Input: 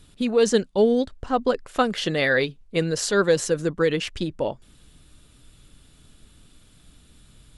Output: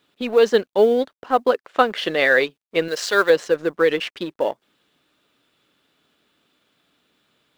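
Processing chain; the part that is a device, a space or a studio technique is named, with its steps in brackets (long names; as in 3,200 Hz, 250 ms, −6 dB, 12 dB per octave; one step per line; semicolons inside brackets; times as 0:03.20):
phone line with mismatched companding (band-pass filter 380–3,300 Hz; mu-law and A-law mismatch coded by A)
0:02.88–0:03.30: spectral tilt +2.5 dB per octave
level +6 dB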